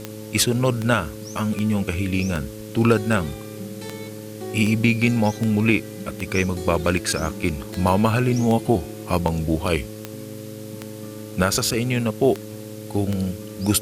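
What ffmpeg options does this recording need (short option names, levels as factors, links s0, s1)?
-af "adeclick=t=4,bandreject=f=107.1:t=h:w=4,bandreject=f=214.2:t=h:w=4,bandreject=f=321.3:t=h:w=4,bandreject=f=428.4:t=h:w=4,bandreject=f=535.5:t=h:w=4,afwtdn=0.0056"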